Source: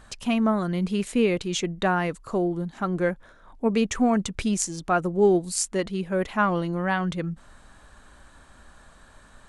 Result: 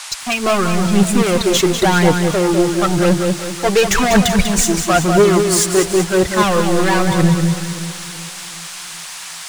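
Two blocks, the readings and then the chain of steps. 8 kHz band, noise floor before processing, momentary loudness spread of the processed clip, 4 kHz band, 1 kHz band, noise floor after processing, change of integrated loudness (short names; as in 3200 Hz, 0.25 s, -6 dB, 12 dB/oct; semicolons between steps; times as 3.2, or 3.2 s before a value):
+14.0 dB, -53 dBFS, 15 LU, +15.5 dB, +10.0 dB, -31 dBFS, +10.5 dB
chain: CVSD 64 kbps; spectral gain 3.51–4.37, 610–7700 Hz +6 dB; spectral noise reduction 16 dB; sample leveller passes 5; phaser 0.96 Hz, delay 3 ms, feedback 54%; band noise 790–9700 Hz -29 dBFS; echo with dull and thin repeats by turns 0.189 s, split 890 Hz, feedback 69%, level -10 dB; lo-fi delay 0.195 s, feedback 35%, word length 5-bit, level -7 dB; gain -2.5 dB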